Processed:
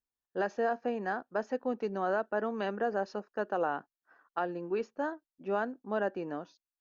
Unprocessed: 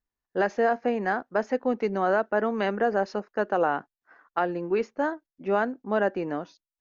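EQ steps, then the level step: bass shelf 62 Hz -8 dB; band-stop 2.1 kHz, Q 5; -7.0 dB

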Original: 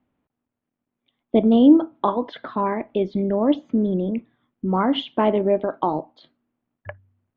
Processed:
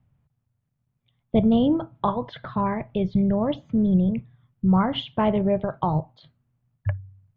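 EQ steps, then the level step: resonant low shelf 190 Hz +13.5 dB, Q 3; -2.0 dB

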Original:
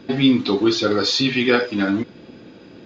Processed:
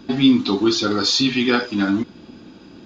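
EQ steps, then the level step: graphic EQ 125/500/2000/4000 Hz -8/-12/-9/-3 dB; +6.0 dB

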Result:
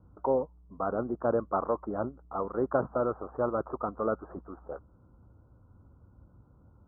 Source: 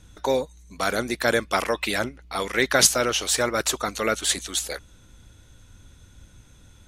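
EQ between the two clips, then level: high-pass 61 Hz; steep low-pass 1.3 kHz 72 dB/octave; -4.0 dB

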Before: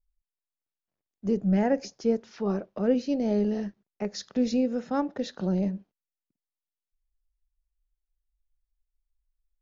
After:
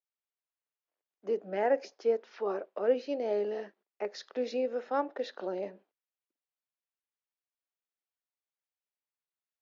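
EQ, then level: high-pass 380 Hz 24 dB/octave; low-pass 3.3 kHz 12 dB/octave; 0.0 dB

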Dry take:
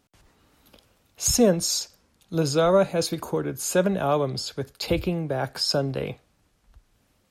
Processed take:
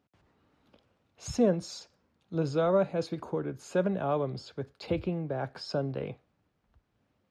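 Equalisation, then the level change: high-pass 83 Hz; tape spacing loss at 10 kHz 23 dB; -5.0 dB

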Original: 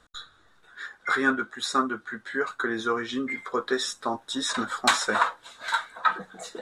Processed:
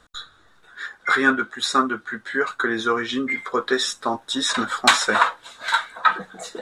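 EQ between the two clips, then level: dynamic bell 2.7 kHz, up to +4 dB, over -40 dBFS, Q 1.1; +4.5 dB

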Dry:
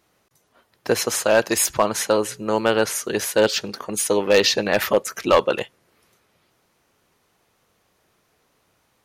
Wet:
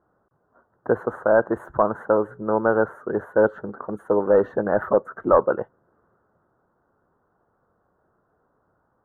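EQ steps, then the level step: elliptic low-pass 1.5 kHz, stop band 40 dB; 0.0 dB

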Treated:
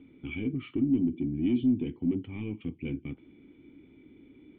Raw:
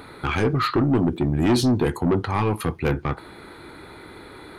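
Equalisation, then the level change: dynamic bell 2.7 kHz, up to +5 dB, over -43 dBFS, Q 1.6; cascade formant filter i; distance through air 59 m; -2.5 dB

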